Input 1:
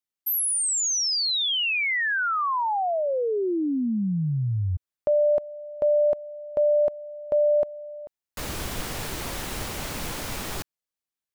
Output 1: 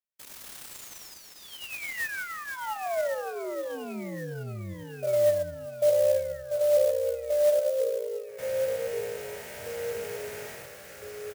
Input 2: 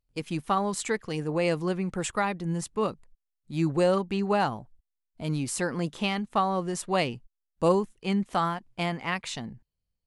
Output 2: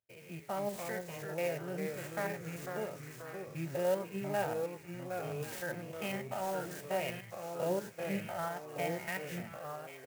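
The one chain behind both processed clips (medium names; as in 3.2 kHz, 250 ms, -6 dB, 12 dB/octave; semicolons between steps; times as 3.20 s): spectrogram pixelated in time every 100 ms; high-pass 110 Hz 24 dB/octave; static phaser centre 1.1 kHz, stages 6; comb 3.2 ms, depth 44%; flange 0.5 Hz, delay 9 ms, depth 8.4 ms, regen +72%; feedback echo behind a high-pass 1088 ms, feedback 64%, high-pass 1.6 kHz, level -9 dB; ever faster or slower copies 233 ms, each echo -2 st, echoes 3, each echo -6 dB; sampling jitter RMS 0.029 ms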